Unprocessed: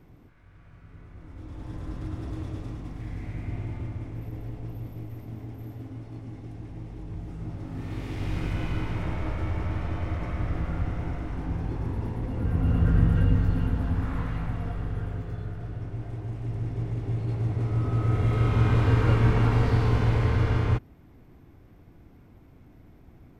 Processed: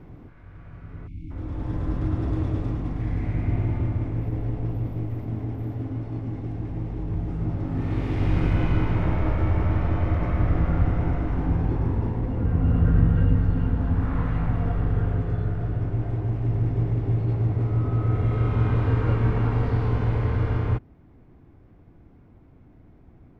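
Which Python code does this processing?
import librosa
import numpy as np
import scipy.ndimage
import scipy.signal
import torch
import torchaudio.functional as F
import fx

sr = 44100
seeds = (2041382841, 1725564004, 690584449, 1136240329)

y = fx.spec_erase(x, sr, start_s=1.07, length_s=0.24, low_hz=330.0, high_hz=2100.0)
y = fx.lowpass(y, sr, hz=1600.0, slope=6)
y = fx.rider(y, sr, range_db=5, speed_s=2.0)
y = y * 10.0 ** (4.0 / 20.0)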